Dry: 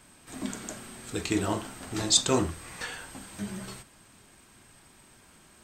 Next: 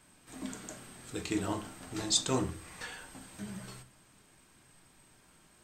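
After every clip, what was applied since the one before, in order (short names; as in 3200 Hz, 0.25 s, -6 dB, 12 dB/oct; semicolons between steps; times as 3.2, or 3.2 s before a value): reverb RT60 0.35 s, pre-delay 6 ms, DRR 10 dB; gain -6.5 dB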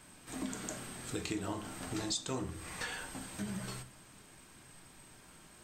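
compressor 5:1, threshold -40 dBFS, peak gain reduction 16 dB; gain +5 dB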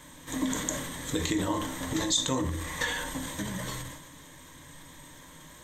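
ripple EQ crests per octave 1.1, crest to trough 11 dB; transient shaper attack +2 dB, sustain +8 dB; gain +6 dB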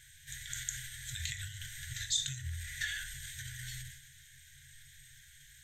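FFT band-reject 150–1400 Hz; gain -5.5 dB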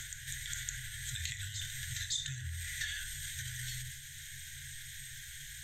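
reverse echo 0.561 s -14 dB; three-band squash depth 70%; gain +1 dB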